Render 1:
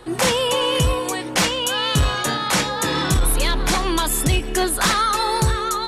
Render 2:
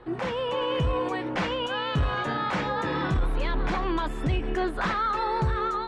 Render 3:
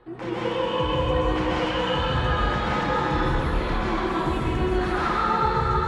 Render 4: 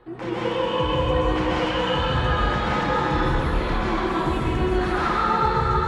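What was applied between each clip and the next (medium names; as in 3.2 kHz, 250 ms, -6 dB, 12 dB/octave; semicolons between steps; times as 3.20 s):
peak limiter -16.5 dBFS, peak gain reduction 5.5 dB; low-pass 2.1 kHz 12 dB/octave; level rider gain up to 4 dB; trim -5.5 dB
plate-style reverb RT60 3 s, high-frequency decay 0.8×, pre-delay 110 ms, DRR -8.5 dB; trim -5.5 dB
hard clipper -11 dBFS, distortion -49 dB; trim +1.5 dB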